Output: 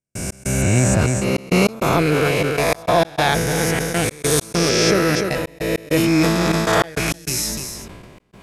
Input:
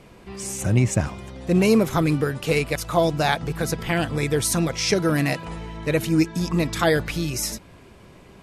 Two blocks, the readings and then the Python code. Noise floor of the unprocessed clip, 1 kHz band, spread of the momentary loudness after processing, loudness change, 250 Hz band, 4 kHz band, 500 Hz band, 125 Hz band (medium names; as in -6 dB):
-48 dBFS, +6.0 dB, 8 LU, +4.0 dB, +3.0 dB, +6.0 dB, +4.5 dB, +3.0 dB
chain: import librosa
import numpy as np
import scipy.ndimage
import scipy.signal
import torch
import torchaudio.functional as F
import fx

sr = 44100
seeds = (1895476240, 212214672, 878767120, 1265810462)

p1 = fx.spec_swells(x, sr, rise_s=2.67)
p2 = fx.step_gate(p1, sr, bpm=99, pattern='.x.xxxx.x', floor_db=-60.0, edge_ms=4.5)
p3 = p2 + fx.echo_single(p2, sr, ms=297, db=-12.5, dry=0)
y = fx.sustainer(p3, sr, db_per_s=30.0)